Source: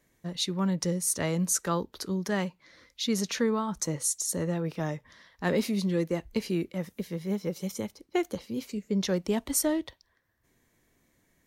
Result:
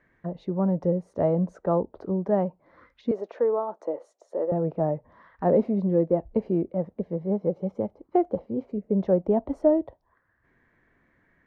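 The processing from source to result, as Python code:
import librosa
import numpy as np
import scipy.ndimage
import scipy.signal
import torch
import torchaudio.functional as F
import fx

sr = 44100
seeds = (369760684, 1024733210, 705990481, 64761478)

y = fx.highpass(x, sr, hz=360.0, slope=24, at=(3.11, 4.52))
y = fx.envelope_lowpass(y, sr, base_hz=670.0, top_hz=1700.0, q=2.7, full_db=-34.5, direction='down')
y = y * 10.0 ** (2.5 / 20.0)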